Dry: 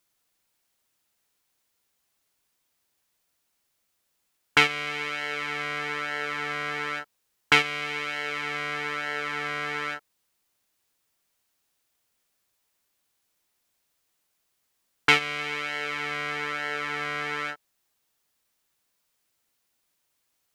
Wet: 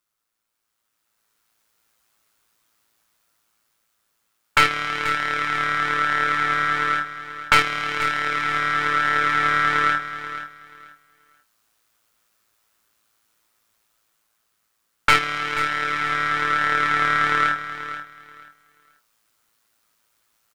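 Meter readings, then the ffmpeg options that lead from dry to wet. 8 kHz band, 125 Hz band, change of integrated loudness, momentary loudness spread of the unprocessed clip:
+4.5 dB, +6.5 dB, +6.5 dB, 10 LU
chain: -filter_complex "[0:a]tremolo=f=110:d=0.571,aeval=exprs='(tanh(7.08*val(0)+0.65)-tanh(0.65))/7.08':c=same,equalizer=f=1300:t=o:w=0.65:g=7.5,asplit=2[s0][s1];[s1]adelay=21,volume=0.398[s2];[s0][s2]amix=inputs=2:normalize=0,asplit=2[s3][s4];[s4]aecho=0:1:483|966|1449:0.251|0.0527|0.0111[s5];[s3][s5]amix=inputs=2:normalize=0,dynaudnorm=f=480:g=5:m=3.98"

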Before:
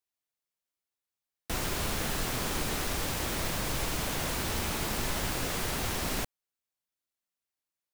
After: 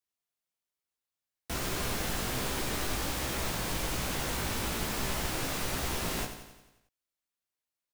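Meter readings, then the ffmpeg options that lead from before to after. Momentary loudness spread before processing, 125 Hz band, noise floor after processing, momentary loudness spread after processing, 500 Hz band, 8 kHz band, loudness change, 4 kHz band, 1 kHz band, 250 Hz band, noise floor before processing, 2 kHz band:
2 LU, -1.0 dB, under -85 dBFS, 2 LU, -0.5 dB, -1.0 dB, -1.0 dB, -1.0 dB, -0.5 dB, -0.5 dB, under -85 dBFS, -1.0 dB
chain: -af "flanger=delay=15:depth=4.1:speed=1.2,aecho=1:1:89|178|267|356|445|534|623:0.335|0.188|0.105|0.0588|0.0329|0.0184|0.0103,volume=1.19"

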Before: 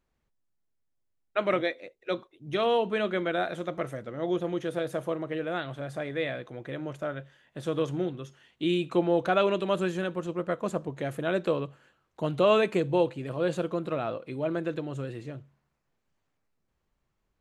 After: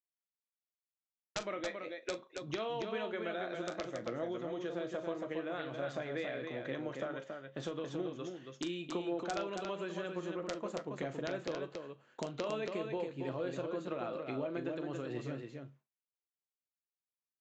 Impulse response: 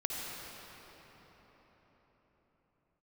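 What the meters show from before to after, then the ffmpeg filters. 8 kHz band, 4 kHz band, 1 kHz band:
no reading, -8.5 dB, -10.5 dB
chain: -filter_complex "[0:a]highpass=180,agate=range=0.0224:threshold=0.00224:ratio=3:detection=peak,acompressor=threshold=0.0158:ratio=8,aresample=16000,aeval=exprs='(mod(20*val(0)+1,2)-1)/20':c=same,aresample=44100,flanger=delay=7.3:depth=2.2:regen=73:speed=0.91:shape=sinusoidal,asplit=2[s0][s1];[s1]aecho=0:1:40.82|277:0.251|0.562[s2];[s0][s2]amix=inputs=2:normalize=0,volume=1.68"

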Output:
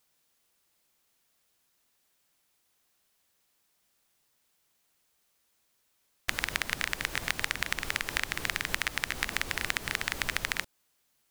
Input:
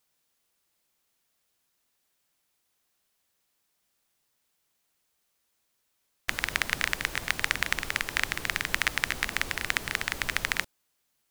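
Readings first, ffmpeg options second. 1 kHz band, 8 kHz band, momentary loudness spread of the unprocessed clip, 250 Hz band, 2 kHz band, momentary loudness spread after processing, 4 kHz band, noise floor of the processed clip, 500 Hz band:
-2.5 dB, -1.5 dB, 3 LU, -1.5 dB, -3.0 dB, 2 LU, -2.0 dB, -74 dBFS, -1.5 dB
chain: -af "acompressor=threshold=0.0447:ratio=6,volume=1.33"

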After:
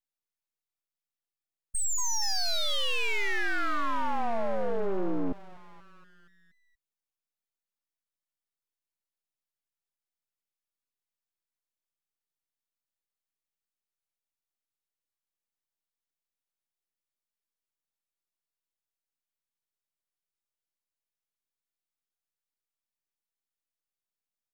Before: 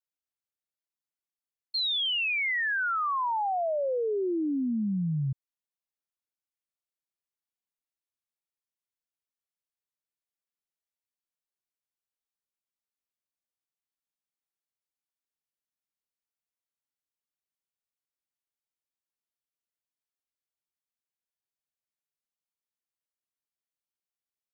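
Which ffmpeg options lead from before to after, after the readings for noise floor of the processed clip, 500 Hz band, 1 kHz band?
under -85 dBFS, -2.5 dB, -2.5 dB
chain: -filter_complex "[0:a]asplit=7[s0][s1][s2][s3][s4][s5][s6];[s1]adelay=237,afreqshift=140,volume=0.2[s7];[s2]adelay=474,afreqshift=280,volume=0.112[s8];[s3]adelay=711,afreqshift=420,volume=0.0624[s9];[s4]adelay=948,afreqshift=560,volume=0.0351[s10];[s5]adelay=1185,afreqshift=700,volume=0.0197[s11];[s6]adelay=1422,afreqshift=840,volume=0.011[s12];[s0][s7][s8][s9][s10][s11][s12]amix=inputs=7:normalize=0,aeval=exprs='abs(val(0))':c=same,aeval=exprs='0.0794*(cos(1*acos(clip(val(0)/0.0794,-1,1)))-cos(1*PI/2))+0.0224*(cos(2*acos(clip(val(0)/0.0794,-1,1)))-cos(2*PI/2))+0.00794*(cos(8*acos(clip(val(0)/0.0794,-1,1)))-cos(8*PI/2))':c=same"

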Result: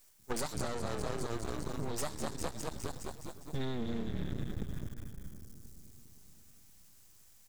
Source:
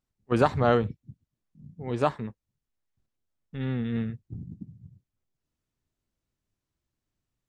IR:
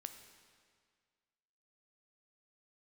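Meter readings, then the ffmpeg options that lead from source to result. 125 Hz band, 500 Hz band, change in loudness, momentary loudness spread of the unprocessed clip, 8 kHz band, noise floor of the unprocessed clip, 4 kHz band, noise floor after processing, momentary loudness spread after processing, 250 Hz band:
-8.0 dB, -11.0 dB, -12.0 dB, 20 LU, no reading, under -85 dBFS, -0.5 dB, -60 dBFS, 19 LU, -8.5 dB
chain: -filter_complex "[0:a]asplit=2[s0][s1];[s1]asplit=8[s2][s3][s4][s5][s6][s7][s8][s9];[s2]adelay=205,afreqshift=-43,volume=0.398[s10];[s3]adelay=410,afreqshift=-86,volume=0.243[s11];[s4]adelay=615,afreqshift=-129,volume=0.148[s12];[s5]adelay=820,afreqshift=-172,volume=0.0902[s13];[s6]adelay=1025,afreqshift=-215,volume=0.055[s14];[s7]adelay=1230,afreqshift=-258,volume=0.0335[s15];[s8]adelay=1435,afreqshift=-301,volume=0.0204[s16];[s9]adelay=1640,afreqshift=-344,volume=0.0124[s17];[s10][s11][s12][s13][s14][s15][s16][s17]amix=inputs=8:normalize=0[s18];[s0][s18]amix=inputs=2:normalize=0,aexciter=amount=13.9:drive=4.7:freq=4300,acompressor=threshold=0.0126:ratio=8,aeval=exprs='max(val(0),0)':c=same,asplit=2[s19][s20];[s20]adelay=518,lowpass=f=960:p=1,volume=0.168,asplit=2[s21][s22];[s22]adelay=518,lowpass=f=960:p=1,volume=0.51,asplit=2[s23][s24];[s24]adelay=518,lowpass=f=960:p=1,volume=0.51,asplit=2[s25][s26];[s26]adelay=518,lowpass=f=960:p=1,volume=0.51,asplit=2[s27][s28];[s28]adelay=518,lowpass=f=960:p=1,volume=0.51[s29];[s21][s23][s25][s27][s29]amix=inputs=5:normalize=0[s30];[s19][s30]amix=inputs=2:normalize=0,volume=2.82"

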